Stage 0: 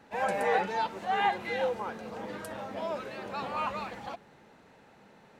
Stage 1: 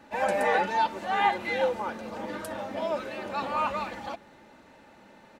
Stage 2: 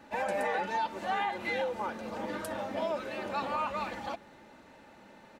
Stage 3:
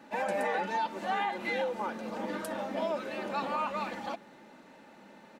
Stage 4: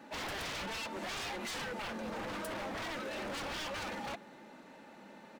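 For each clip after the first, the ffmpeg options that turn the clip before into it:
ffmpeg -i in.wav -af "aecho=1:1:3.4:0.44,volume=3dB" out.wav
ffmpeg -i in.wav -af "alimiter=limit=-22dB:level=0:latency=1:release=219,volume=-1dB" out.wav
ffmpeg -i in.wav -af "lowshelf=frequency=130:width_type=q:width=1.5:gain=-10" out.wav
ffmpeg -i in.wav -af "aeval=exprs='0.0178*(abs(mod(val(0)/0.0178+3,4)-2)-1)':channel_layout=same" out.wav

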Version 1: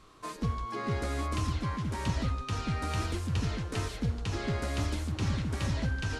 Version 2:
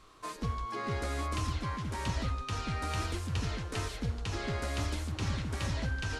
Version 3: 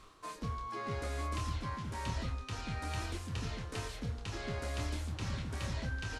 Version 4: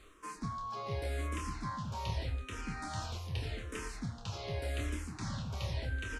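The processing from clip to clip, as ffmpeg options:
ffmpeg -i in.wav -af "equalizer=frequency=180:width_type=o:width=2.2:gain=-5" out.wav
ffmpeg -i in.wav -filter_complex "[0:a]areverse,acompressor=mode=upward:threshold=-39dB:ratio=2.5,areverse,asplit=2[link_01][link_02];[link_02]adelay=27,volume=-7dB[link_03];[link_01][link_03]amix=inputs=2:normalize=0,volume=-5dB" out.wav
ffmpeg -i in.wav -filter_complex "[0:a]asplit=2[link_01][link_02];[link_02]afreqshift=-0.84[link_03];[link_01][link_03]amix=inputs=2:normalize=1,volume=2.5dB" out.wav

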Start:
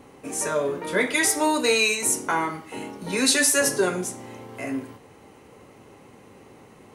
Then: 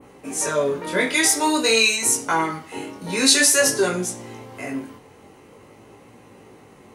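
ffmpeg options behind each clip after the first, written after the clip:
ffmpeg -i in.wav -af "adynamicequalizer=threshold=0.0141:dfrequency=5100:dqfactor=0.78:tfrequency=5100:tqfactor=0.78:attack=5:release=100:ratio=0.375:range=2.5:mode=boostabove:tftype=bell,flanger=delay=17:depth=5.6:speed=0.49,volume=4.5dB" out.wav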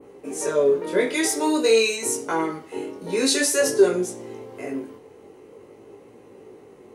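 ffmpeg -i in.wav -af "equalizer=frequency=410:width_type=o:width=0.95:gain=13,volume=-7dB" out.wav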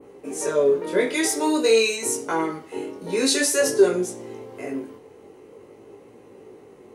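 ffmpeg -i in.wav -af anull out.wav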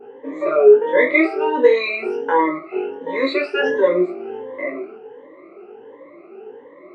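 ffmpeg -i in.wav -af "afftfilt=real='re*pow(10,23/40*sin(2*PI*(1.1*log(max(b,1)*sr/1024/100)/log(2)-(1.4)*(pts-256)/sr)))':imag='im*pow(10,23/40*sin(2*PI*(1.1*log(max(b,1)*sr/1024/100)/log(2)-(1.4)*(pts-256)/sr)))':win_size=1024:overlap=0.75,highpass=300,equalizer=frequency=350:width_type=q:width=4:gain=3,equalizer=frequency=580:width_type=q:width=4:gain=5,equalizer=frequency=1200:width_type=q:width=4:gain=5,equalizer=frequency=2100:width_type=q:width=4:gain=4,lowpass=frequency=2600:width=0.5412,lowpass=frequency=2600:width=1.3066" out.wav

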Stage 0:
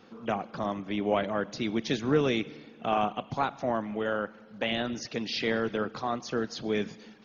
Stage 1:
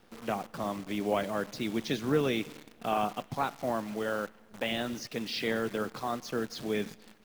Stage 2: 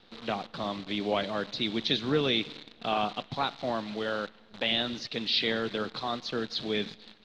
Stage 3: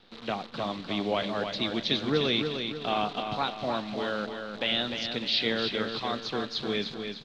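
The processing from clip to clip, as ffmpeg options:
ffmpeg -i in.wav -af "acrusher=bits=8:dc=4:mix=0:aa=0.000001,volume=-2.5dB" out.wav
ffmpeg -i in.wav -af "lowpass=frequency=3900:width_type=q:width=5.1" out.wav
ffmpeg -i in.wav -af "aecho=1:1:301|602|903|1204|1505:0.473|0.218|0.1|0.0461|0.0212" out.wav

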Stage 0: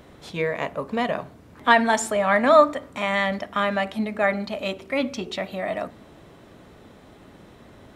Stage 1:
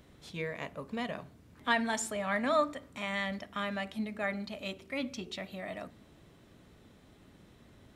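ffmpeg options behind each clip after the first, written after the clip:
ffmpeg -i in.wav -af "equalizer=frequency=750:width=0.47:gain=-7.5,volume=-7dB" out.wav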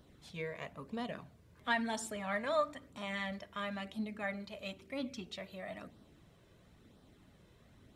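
ffmpeg -i in.wav -af "flanger=delay=0.2:depth=1.8:regen=-35:speed=1:shape=sinusoidal,volume=-1dB" out.wav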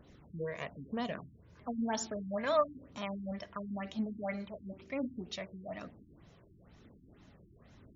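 ffmpeg -i in.wav -af "aexciter=amount=2.1:drive=4.4:freq=5500,afftfilt=real='re*lt(b*sr/1024,360*pow(7300/360,0.5+0.5*sin(2*PI*2.1*pts/sr)))':imag='im*lt(b*sr/1024,360*pow(7300/360,0.5+0.5*sin(2*PI*2.1*pts/sr)))':win_size=1024:overlap=0.75,volume=3.5dB" out.wav

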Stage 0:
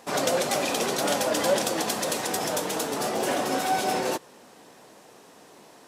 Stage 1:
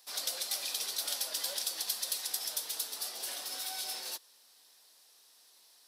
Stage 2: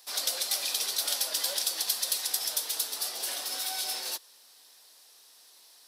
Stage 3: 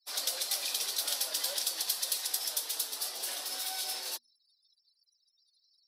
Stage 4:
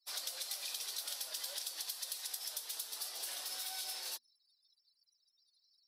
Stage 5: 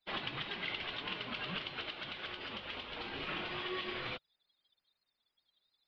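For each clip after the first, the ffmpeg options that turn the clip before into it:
ffmpeg -i in.wav -filter_complex "[0:a]aderivative,acrossover=split=320|1200|6700[link_01][link_02][link_03][link_04];[link_03]aexciter=amount=1.8:drive=7.8:freq=3600[link_05];[link_01][link_02][link_05][link_04]amix=inputs=4:normalize=0,volume=-4dB" out.wav
ffmpeg -i in.wav -af "highpass=180,volume=5.5dB" out.wav
ffmpeg -i in.wav -af "afftfilt=real='re*gte(hypot(re,im),0.00355)':imag='im*gte(hypot(re,im),0.00355)':win_size=1024:overlap=0.75,bandreject=frequency=60:width_type=h:width=6,bandreject=frequency=120:width_type=h:width=6,bandreject=frequency=180:width_type=h:width=6,bandreject=frequency=240:width_type=h:width=6,volume=-3dB" out.wav
ffmpeg -i in.wav -af "lowshelf=frequency=420:gain=-9.5,acompressor=threshold=-35dB:ratio=6,volume=-3dB" out.wav
ffmpeg -i in.wav -af "highpass=frequency=330:width_type=q:width=0.5412,highpass=frequency=330:width_type=q:width=1.307,lowpass=frequency=3200:width_type=q:width=0.5176,lowpass=frequency=3200:width_type=q:width=0.7071,lowpass=frequency=3200:width_type=q:width=1.932,afreqshift=-390,volume=12dB" out.wav

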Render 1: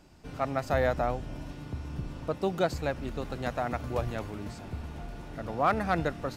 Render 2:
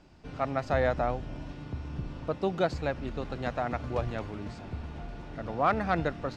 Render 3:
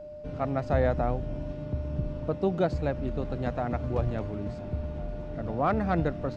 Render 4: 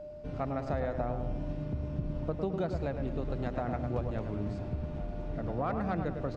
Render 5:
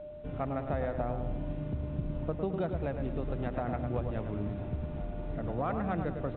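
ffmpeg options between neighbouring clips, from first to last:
ffmpeg -i in.wav -af "lowpass=5100" out.wav
ffmpeg -i in.wav -af "tiltshelf=frequency=660:gain=5.5,aeval=exprs='val(0)+0.01*sin(2*PI*600*n/s)':channel_layout=same" out.wav
ffmpeg -i in.wav -filter_complex "[0:a]acompressor=threshold=-28dB:ratio=5,asplit=2[link_01][link_02];[link_02]adelay=106,lowpass=frequency=2000:poles=1,volume=-6dB,asplit=2[link_03][link_04];[link_04]adelay=106,lowpass=frequency=2000:poles=1,volume=0.47,asplit=2[link_05][link_06];[link_06]adelay=106,lowpass=frequency=2000:poles=1,volume=0.47,asplit=2[link_07][link_08];[link_08]adelay=106,lowpass=frequency=2000:poles=1,volume=0.47,asplit=2[link_09][link_10];[link_10]adelay=106,lowpass=frequency=2000:poles=1,volume=0.47,asplit=2[link_11][link_12];[link_12]adelay=106,lowpass=frequency=2000:poles=1,volume=0.47[link_13];[link_01][link_03][link_05][link_07][link_09][link_11][link_13]amix=inputs=7:normalize=0,volume=-1.5dB" out.wav
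ffmpeg -i in.wav -ar 8000 -c:a pcm_alaw out.wav

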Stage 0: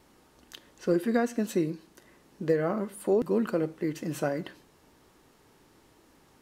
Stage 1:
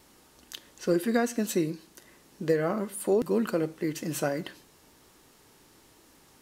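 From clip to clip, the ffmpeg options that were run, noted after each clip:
ffmpeg -i in.wav -af "highshelf=frequency=3000:gain=8.5" out.wav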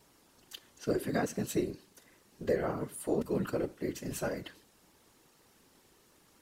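ffmpeg -i in.wav -af "afftfilt=real='hypot(re,im)*cos(2*PI*random(0))':imag='hypot(re,im)*sin(2*PI*random(1))':win_size=512:overlap=0.75" out.wav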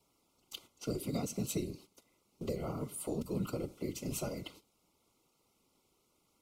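ffmpeg -i in.wav -filter_complex "[0:a]acrossover=split=210|3000[link_01][link_02][link_03];[link_02]acompressor=threshold=-39dB:ratio=6[link_04];[link_01][link_04][link_03]amix=inputs=3:normalize=0,agate=range=-11dB:threshold=-55dB:ratio=16:detection=peak,asuperstop=centerf=1700:order=12:qfactor=3,volume=1dB" out.wav

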